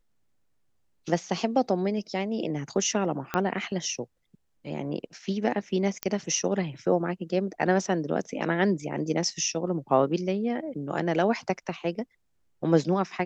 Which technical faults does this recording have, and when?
3.34 pop -12 dBFS
6.03 pop -11 dBFS

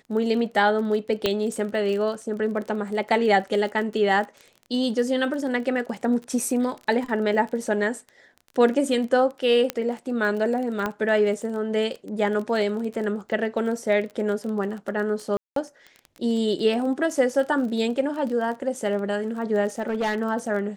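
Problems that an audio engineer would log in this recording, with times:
crackle 26/s -31 dBFS
1.26 pop -8 dBFS
9.7 pop -9 dBFS
10.86 pop -13 dBFS
15.37–15.56 gap 0.193 s
19.79–20.17 clipped -20.5 dBFS

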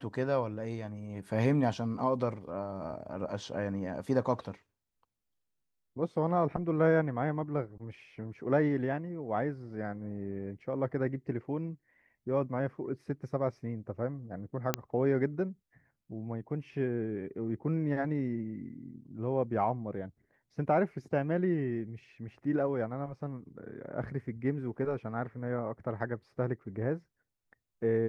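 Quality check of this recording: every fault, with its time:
14.74 pop -11 dBFS

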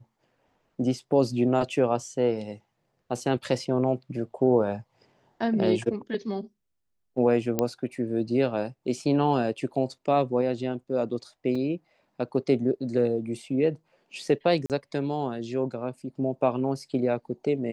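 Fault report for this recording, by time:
7.59 pop -10 dBFS
11.55 gap 3.8 ms
14.66–14.7 gap 38 ms

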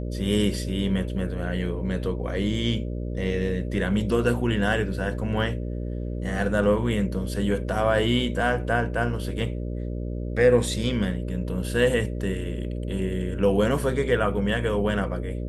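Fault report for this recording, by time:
buzz 60 Hz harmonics 10 -30 dBFS

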